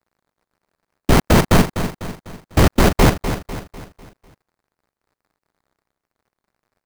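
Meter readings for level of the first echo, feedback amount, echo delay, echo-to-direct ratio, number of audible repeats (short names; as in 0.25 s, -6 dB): -10.0 dB, 45%, 0.249 s, -9.0 dB, 4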